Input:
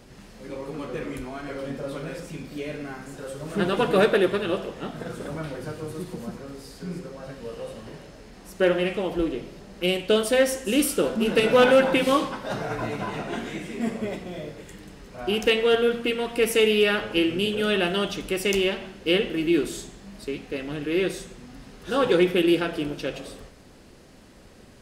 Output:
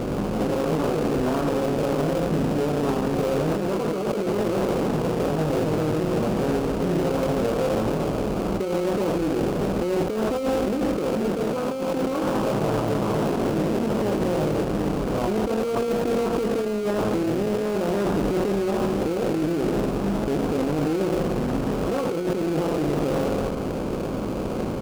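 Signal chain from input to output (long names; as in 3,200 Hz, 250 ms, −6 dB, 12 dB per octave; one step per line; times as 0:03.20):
compressor on every frequency bin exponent 0.6
linear-phase brick-wall low-pass 1,300 Hz
parametric band 120 Hz +5.5 dB 1.5 octaves
double-tracking delay 19 ms −10.5 dB
in parallel at −5 dB: decimation without filtering 24×
on the sum: compressor whose output falls as the input rises −20 dBFS, ratio −1
brickwall limiter −15 dBFS, peak gain reduction 8.5 dB
highs frequency-modulated by the lows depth 0.61 ms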